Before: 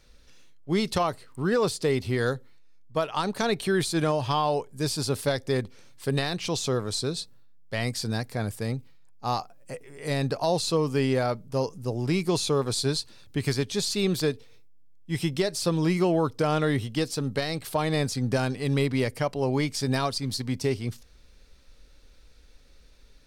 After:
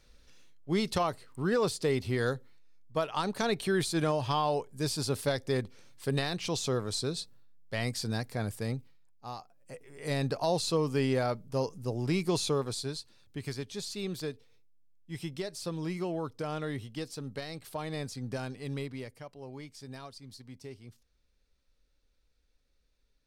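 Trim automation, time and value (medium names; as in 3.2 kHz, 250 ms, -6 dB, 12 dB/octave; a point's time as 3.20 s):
8.74 s -4 dB
9.35 s -14.5 dB
10.00 s -4 dB
12.49 s -4 dB
12.92 s -11 dB
18.71 s -11 dB
19.24 s -19 dB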